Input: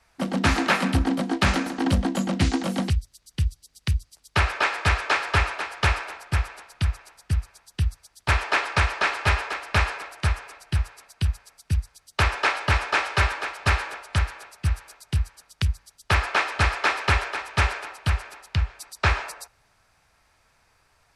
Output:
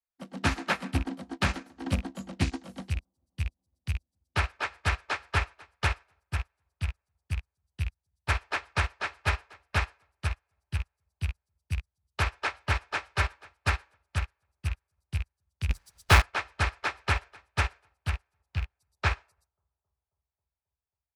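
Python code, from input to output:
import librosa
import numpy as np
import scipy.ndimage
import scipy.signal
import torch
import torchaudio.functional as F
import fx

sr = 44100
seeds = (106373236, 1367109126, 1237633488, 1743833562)

p1 = fx.rattle_buzz(x, sr, strikes_db=-19.0, level_db=-18.0)
p2 = fx.power_curve(p1, sr, exponent=0.5, at=(15.7, 16.22))
p3 = p2 + fx.echo_bbd(p2, sr, ms=269, stages=2048, feedback_pct=77, wet_db=-20.5, dry=0)
y = fx.upward_expand(p3, sr, threshold_db=-40.0, expansion=2.5)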